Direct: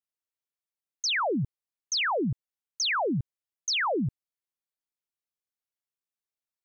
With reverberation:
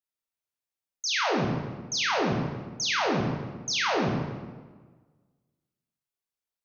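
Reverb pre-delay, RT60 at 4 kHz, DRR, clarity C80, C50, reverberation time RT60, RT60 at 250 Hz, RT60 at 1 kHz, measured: 17 ms, 1.0 s, -2.5 dB, 3.5 dB, 1.0 dB, 1.4 s, 1.6 s, 1.4 s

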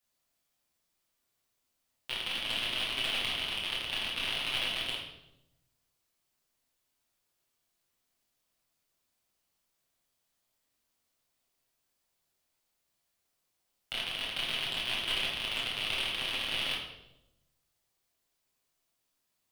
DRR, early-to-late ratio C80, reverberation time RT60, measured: -4.5 dB, 6.5 dB, 0.90 s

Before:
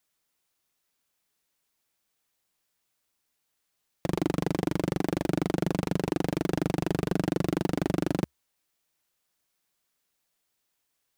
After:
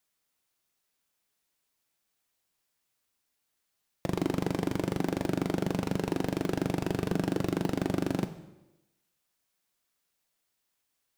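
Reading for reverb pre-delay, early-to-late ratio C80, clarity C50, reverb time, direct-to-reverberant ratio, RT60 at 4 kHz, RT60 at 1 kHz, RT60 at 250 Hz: 4 ms, 14.0 dB, 12.0 dB, 0.95 s, 9.5 dB, 0.85 s, 0.95 s, 1.0 s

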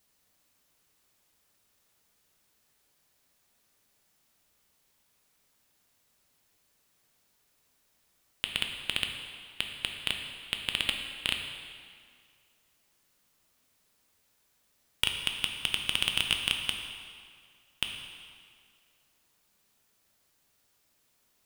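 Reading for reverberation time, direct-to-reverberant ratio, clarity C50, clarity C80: 2.1 s, 3.0 dB, 5.0 dB, 6.0 dB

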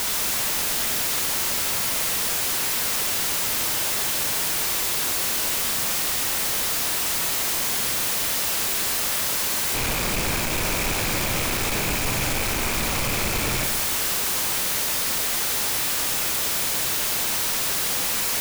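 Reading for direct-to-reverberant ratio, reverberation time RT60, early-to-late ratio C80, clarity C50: 3.5 dB, 1.5 s, 6.5 dB, 5.0 dB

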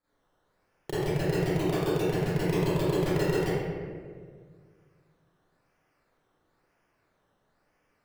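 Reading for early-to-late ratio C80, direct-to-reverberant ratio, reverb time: -3.0 dB, -14.5 dB, 1.8 s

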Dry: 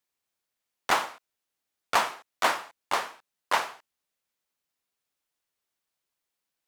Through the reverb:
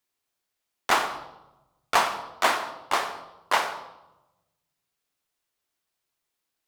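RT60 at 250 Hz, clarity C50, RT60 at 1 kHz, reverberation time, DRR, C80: 1.3 s, 10.0 dB, 0.95 s, 0.95 s, 7.0 dB, 12.0 dB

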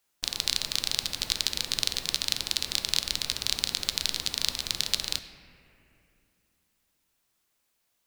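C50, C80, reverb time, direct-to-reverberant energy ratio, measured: 11.0 dB, 11.5 dB, 2.5 s, 9.5 dB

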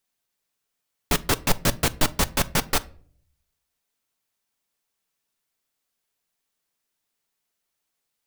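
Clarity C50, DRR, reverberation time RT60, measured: 22.0 dB, 11.5 dB, 0.50 s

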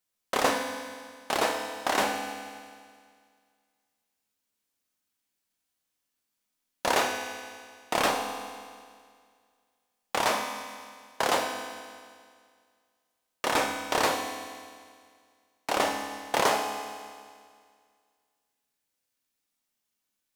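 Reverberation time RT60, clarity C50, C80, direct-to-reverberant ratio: 2.0 s, 5.0 dB, 6.5 dB, 3.0 dB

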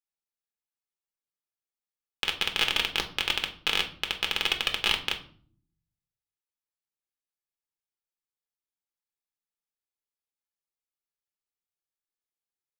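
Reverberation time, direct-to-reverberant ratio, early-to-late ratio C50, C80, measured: 0.50 s, 3.5 dB, 12.5 dB, 17.0 dB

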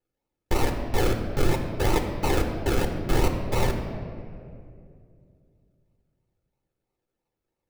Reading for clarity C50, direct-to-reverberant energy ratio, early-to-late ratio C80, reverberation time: 6.0 dB, 4.0 dB, 7.5 dB, 2.4 s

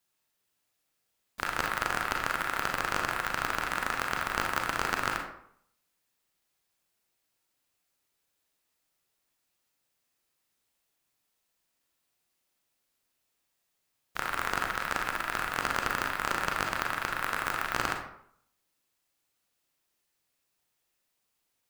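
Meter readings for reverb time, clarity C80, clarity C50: 0.65 s, 8.5 dB, 5.0 dB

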